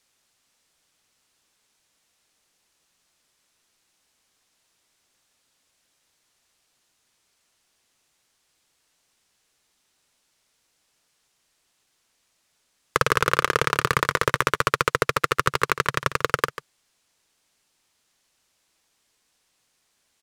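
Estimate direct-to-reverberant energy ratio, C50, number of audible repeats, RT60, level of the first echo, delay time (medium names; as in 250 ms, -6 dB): no reverb, no reverb, 1, no reverb, -13.5 dB, 143 ms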